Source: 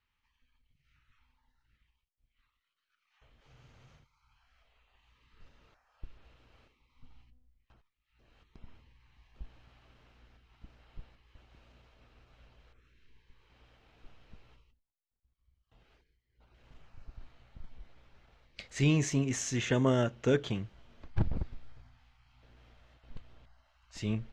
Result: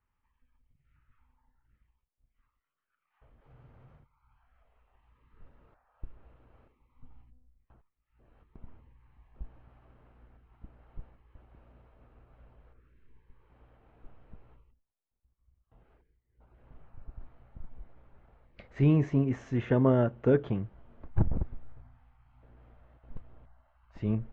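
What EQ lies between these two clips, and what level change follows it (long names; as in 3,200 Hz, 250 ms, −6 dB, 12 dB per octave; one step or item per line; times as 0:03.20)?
low-pass filter 1,200 Hz 12 dB per octave
+3.5 dB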